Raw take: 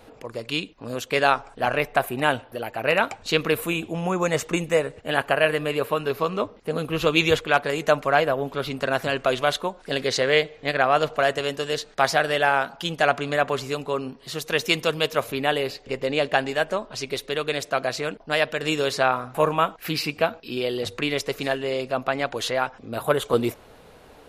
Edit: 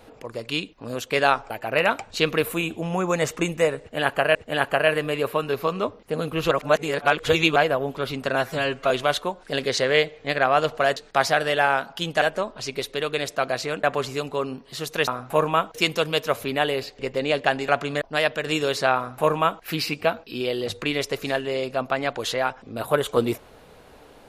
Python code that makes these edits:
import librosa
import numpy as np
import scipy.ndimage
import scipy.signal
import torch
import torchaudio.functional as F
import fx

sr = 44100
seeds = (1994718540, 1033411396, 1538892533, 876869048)

y = fx.edit(x, sr, fx.cut(start_s=1.5, length_s=1.12),
    fx.repeat(start_s=4.92, length_s=0.55, count=2),
    fx.reverse_span(start_s=7.08, length_s=1.05),
    fx.stretch_span(start_s=8.92, length_s=0.37, factor=1.5),
    fx.cut(start_s=11.35, length_s=0.45),
    fx.swap(start_s=13.05, length_s=0.33, other_s=16.56, other_length_s=1.62),
    fx.duplicate(start_s=19.12, length_s=0.67, to_s=14.62), tone=tone)